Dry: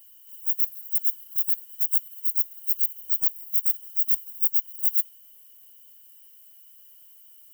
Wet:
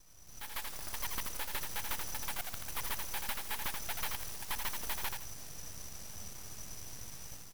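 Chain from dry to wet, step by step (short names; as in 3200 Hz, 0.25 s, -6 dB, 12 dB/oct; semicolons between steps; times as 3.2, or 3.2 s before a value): local time reversal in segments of 0.134 s; ladder band-pass 2800 Hz, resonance 25%; in parallel at +1 dB: limiter -58.5 dBFS, peak gain reduction 7 dB; on the sum: AGC gain up to 14.5 dB; on a send: frequency-shifting echo 82 ms, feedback 34%, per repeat -36 Hz, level -4 dB; on the sum: full-wave rectifier; gain +13.5 dB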